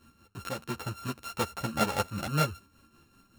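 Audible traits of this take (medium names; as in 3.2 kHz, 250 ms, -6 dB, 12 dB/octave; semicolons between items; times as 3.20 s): a buzz of ramps at a fixed pitch in blocks of 32 samples; tremolo triangle 5.1 Hz, depth 65%; a shimmering, thickened sound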